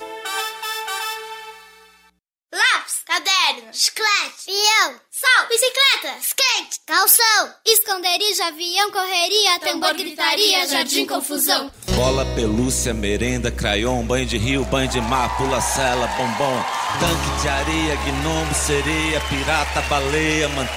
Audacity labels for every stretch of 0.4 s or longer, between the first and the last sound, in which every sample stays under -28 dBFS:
1.500000	2.530000	silence